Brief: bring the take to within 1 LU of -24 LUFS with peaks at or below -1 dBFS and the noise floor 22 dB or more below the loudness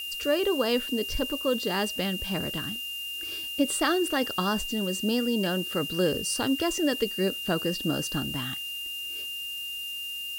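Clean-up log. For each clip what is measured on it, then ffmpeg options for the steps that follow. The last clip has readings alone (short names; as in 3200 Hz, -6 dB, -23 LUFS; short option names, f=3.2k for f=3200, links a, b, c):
steady tone 2800 Hz; tone level -33 dBFS; noise floor -36 dBFS; noise floor target -50 dBFS; loudness -28.0 LUFS; peak -12.5 dBFS; loudness target -24.0 LUFS
-> -af "bandreject=f=2.8k:w=30"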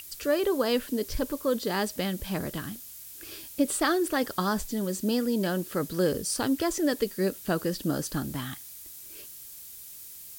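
steady tone none; noise floor -45 dBFS; noise floor target -51 dBFS
-> -af "afftdn=nr=6:nf=-45"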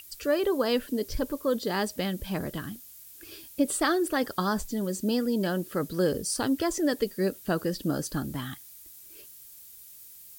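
noise floor -49 dBFS; noise floor target -51 dBFS
-> -af "afftdn=nr=6:nf=-49"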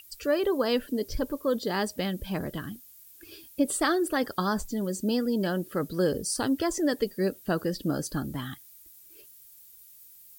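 noise floor -53 dBFS; loudness -29.0 LUFS; peak -13.0 dBFS; loudness target -24.0 LUFS
-> -af "volume=5dB"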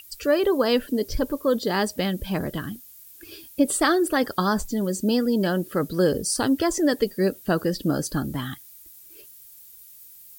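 loudness -24.0 LUFS; peak -8.0 dBFS; noise floor -48 dBFS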